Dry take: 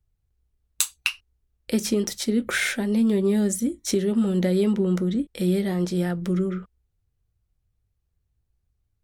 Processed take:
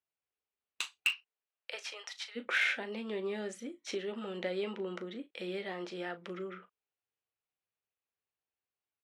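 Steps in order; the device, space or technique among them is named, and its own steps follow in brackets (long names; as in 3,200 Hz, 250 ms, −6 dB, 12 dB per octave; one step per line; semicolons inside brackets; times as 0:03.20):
0:01.08–0:02.35: high-pass filter 300 Hz → 990 Hz 24 dB per octave
megaphone (band-pass filter 560–3,200 Hz; parametric band 2,700 Hz +6 dB 0.49 octaves; hard clipping −16 dBFS, distortion −13 dB; double-tracking delay 37 ms −13 dB)
level −5.5 dB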